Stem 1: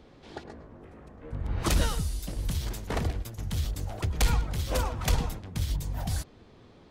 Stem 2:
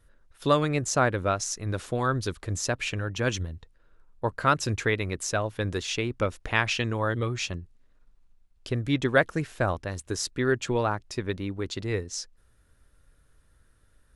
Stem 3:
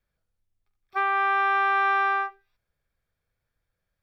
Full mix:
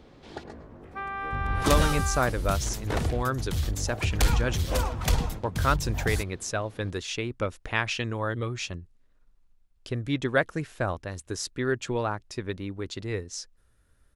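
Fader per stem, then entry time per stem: +1.5, -2.5, -10.5 dB; 0.00, 1.20, 0.00 s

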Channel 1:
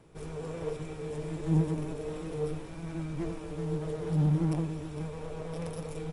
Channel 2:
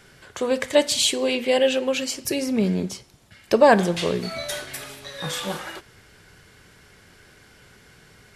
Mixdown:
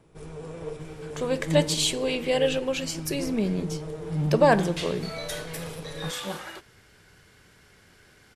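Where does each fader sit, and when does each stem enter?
-0.5, -4.5 dB; 0.00, 0.80 s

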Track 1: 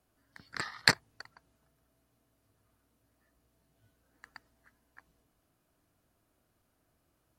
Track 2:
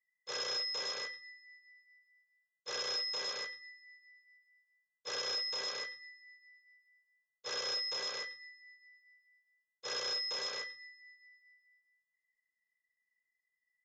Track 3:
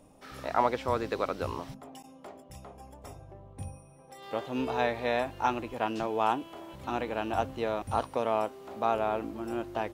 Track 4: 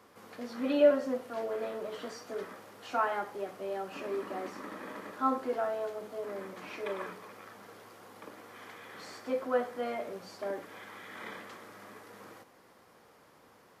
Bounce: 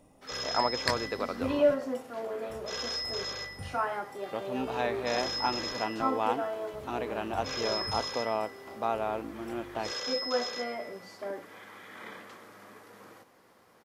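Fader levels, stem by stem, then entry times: -7.5, +1.5, -2.5, -1.0 dB; 0.00, 0.00, 0.00, 0.80 s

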